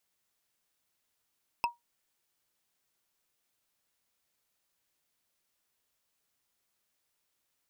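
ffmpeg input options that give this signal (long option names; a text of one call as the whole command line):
ffmpeg -f lavfi -i "aevalsrc='0.0841*pow(10,-3*t/0.16)*sin(2*PI*950*t)+0.0501*pow(10,-3*t/0.047)*sin(2*PI*2619.2*t)+0.0299*pow(10,-3*t/0.021)*sin(2*PI*5133.8*t)+0.0178*pow(10,-3*t/0.012)*sin(2*PI*8486.4*t)+0.0106*pow(10,-3*t/0.007)*sin(2*PI*12673*t)':duration=0.45:sample_rate=44100" out.wav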